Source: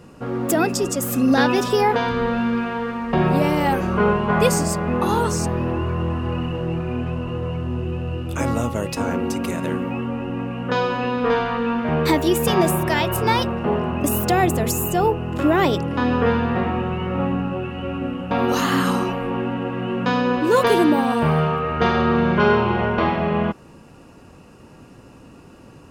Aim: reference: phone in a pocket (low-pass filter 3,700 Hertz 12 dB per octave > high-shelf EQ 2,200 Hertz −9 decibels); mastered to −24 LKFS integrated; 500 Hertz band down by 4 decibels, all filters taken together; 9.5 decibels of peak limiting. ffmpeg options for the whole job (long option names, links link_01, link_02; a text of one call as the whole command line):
ffmpeg -i in.wav -af "equalizer=frequency=500:width_type=o:gain=-4.5,alimiter=limit=-15.5dB:level=0:latency=1,lowpass=3700,highshelf=frequency=2200:gain=-9,volume=2dB" out.wav